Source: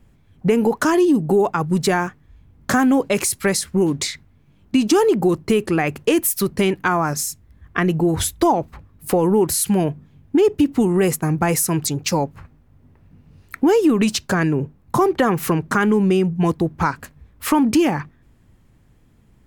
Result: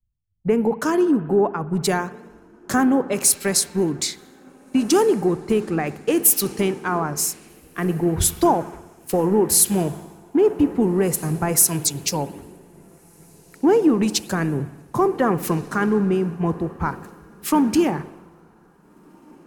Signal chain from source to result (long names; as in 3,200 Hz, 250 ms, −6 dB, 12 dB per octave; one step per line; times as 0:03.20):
spring reverb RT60 2.5 s, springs 60 ms, chirp 60 ms, DRR 13.5 dB
dynamic equaliser 2,800 Hz, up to −3 dB, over −33 dBFS, Q 0.84
feedback delay with all-pass diffusion 1,685 ms, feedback 62%, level −15 dB
multiband upward and downward expander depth 100%
level −3 dB